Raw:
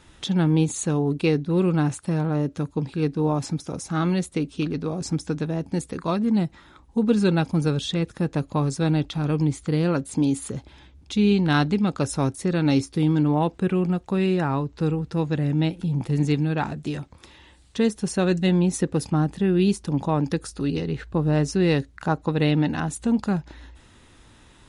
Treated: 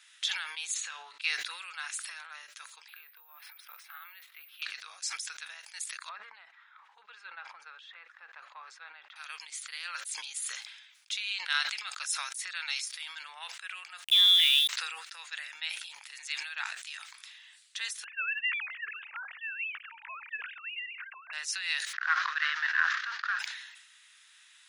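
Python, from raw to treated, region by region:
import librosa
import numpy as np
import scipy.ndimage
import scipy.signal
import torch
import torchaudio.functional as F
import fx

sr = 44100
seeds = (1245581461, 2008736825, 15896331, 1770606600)

y = fx.chain(x, sr, fx.lowpass(hz=4300.0, slope=12),
    fx.comb_fb(f0_hz=58.0, decay_s=0.31, harmonics='all', damping=0.0, mix_pct=50), at=(0.74, 1.22))
y = fx.chain(y, sr, fx.over_compress(threshold_db=-26.0, ratio=-0.5),
    fx.air_absorb(metres=410.0),
    fx.resample_bad(factor=3, down='filtered', up='hold'), at=(2.88, 4.62))
y = fx.chain(y, sr, fx.lowpass(hz=1100.0, slope=12),
    fx.band_squash(depth_pct=70), at=(6.09, 9.16))
y = fx.chain(y, sr, fx.freq_invert(carrier_hz=3700),
    fx.sample_gate(floor_db=-30.5), at=(14.04, 14.69))
y = fx.chain(y, sr, fx.sine_speech(),
    fx.ellip_lowpass(hz=2700.0, order=4, stop_db=40),
    fx.tilt_eq(slope=2.5), at=(18.04, 21.33))
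y = fx.chain(y, sr, fx.cvsd(bps=32000),
    fx.lowpass(hz=4000.0, slope=12),
    fx.band_shelf(hz=1400.0, db=14.0, octaves=1.0), at=(21.93, 23.39))
y = scipy.signal.sosfilt(scipy.signal.cheby2(4, 80, 270.0, 'highpass', fs=sr, output='sos'), y)
y = fx.sustainer(y, sr, db_per_s=53.0)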